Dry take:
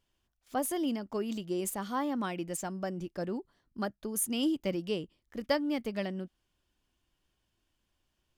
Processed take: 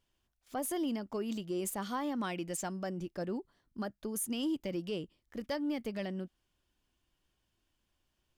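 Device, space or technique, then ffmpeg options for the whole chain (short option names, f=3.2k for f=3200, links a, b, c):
soft clipper into limiter: -filter_complex "[0:a]asettb=1/sr,asplit=3[a][b][c];[a]atrim=end=1.824[d];[b]atrim=start=1.82:end=2.87,asetpts=PTS-STARTPTS,afade=t=in:d=0.004:c=qsin,afade=t=out:st=1.046:d=0.004:c=qsin,equalizer=f=4.8k:w=0.36:g=3.5[e];[c]atrim=start=2.866[f];[d][e]acrossfade=d=0.004:c1=hsin:c2=qsin[g];[g][f]acrossfade=d=0.004:c1=qsin:c2=hsin,asoftclip=type=tanh:threshold=-19dB,alimiter=level_in=2.5dB:limit=-24dB:level=0:latency=1:release=67,volume=-2.5dB,volume=-1dB"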